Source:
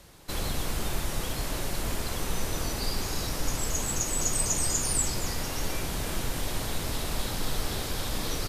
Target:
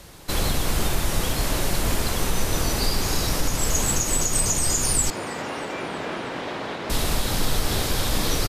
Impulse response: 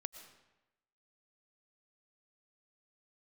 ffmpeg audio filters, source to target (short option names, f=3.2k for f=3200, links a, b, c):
-filter_complex "[0:a]alimiter=limit=-19dB:level=0:latency=1:release=134,asettb=1/sr,asplit=3[a][b][c];[a]atrim=end=5.104[d];[b]atrim=start=5.1:end=6.9,asetpts=PTS-STARTPTS,afade=t=in:d=0.004:c=qsin,afade=t=out:st=1.796:d=0.004:c=qsin,highpass=260,lowpass=2.4k[e];[c]atrim=start=6.896[f];[d][e]acrossfade=d=0.004:c1=hsin:c2=qsin[g];[g][f]acrossfade=d=0.004:c1=qsin:c2=hsin,asplit=2[h][i];[i]asplit=4[j][k][l][m];[j]adelay=319,afreqshift=86,volume=-23.5dB[n];[k]adelay=638,afreqshift=172,volume=-28.2dB[o];[l]adelay=957,afreqshift=258,volume=-33dB[p];[m]adelay=1276,afreqshift=344,volume=-37.7dB[q];[n][o][p][q]amix=inputs=4:normalize=0[r];[h][r]amix=inputs=2:normalize=0,volume=8dB"